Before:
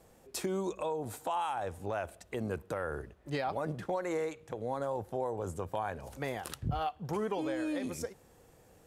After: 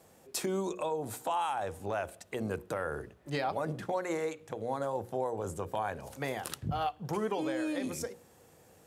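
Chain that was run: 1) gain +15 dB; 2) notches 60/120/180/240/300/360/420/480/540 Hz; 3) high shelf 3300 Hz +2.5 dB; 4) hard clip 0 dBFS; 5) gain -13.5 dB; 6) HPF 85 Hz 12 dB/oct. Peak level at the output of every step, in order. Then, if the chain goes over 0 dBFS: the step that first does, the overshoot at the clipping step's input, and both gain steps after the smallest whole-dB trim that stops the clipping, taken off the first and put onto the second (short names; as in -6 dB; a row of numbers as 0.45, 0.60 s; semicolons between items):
-6.0, -5.5, -3.5, -3.5, -17.0, -17.0 dBFS; no overload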